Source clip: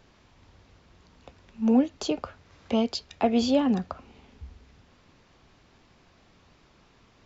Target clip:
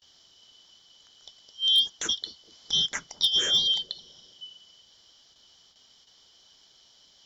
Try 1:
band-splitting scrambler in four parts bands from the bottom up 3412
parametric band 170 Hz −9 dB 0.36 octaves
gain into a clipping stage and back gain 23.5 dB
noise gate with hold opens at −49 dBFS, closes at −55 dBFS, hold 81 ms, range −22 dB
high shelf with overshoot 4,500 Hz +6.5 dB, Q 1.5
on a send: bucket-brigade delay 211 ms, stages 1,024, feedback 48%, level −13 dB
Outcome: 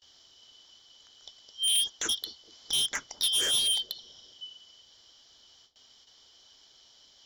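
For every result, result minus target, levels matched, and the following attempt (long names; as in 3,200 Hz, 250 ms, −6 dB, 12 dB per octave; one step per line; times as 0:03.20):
gain into a clipping stage and back: distortion +26 dB; 125 Hz band −4.5 dB
band-splitting scrambler in four parts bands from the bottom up 3412
parametric band 170 Hz −9 dB 0.36 octaves
gain into a clipping stage and back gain 12.5 dB
noise gate with hold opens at −49 dBFS, closes at −55 dBFS, hold 81 ms, range −22 dB
high shelf with overshoot 4,500 Hz +6.5 dB, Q 1.5
on a send: bucket-brigade delay 211 ms, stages 1,024, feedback 48%, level −13 dB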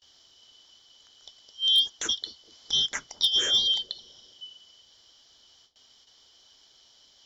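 125 Hz band −4.0 dB
band-splitting scrambler in four parts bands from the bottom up 3412
gain into a clipping stage and back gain 12.5 dB
noise gate with hold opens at −49 dBFS, closes at −55 dBFS, hold 81 ms, range −22 dB
high shelf with overshoot 4,500 Hz +6.5 dB, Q 1.5
on a send: bucket-brigade delay 211 ms, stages 1,024, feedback 48%, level −13 dB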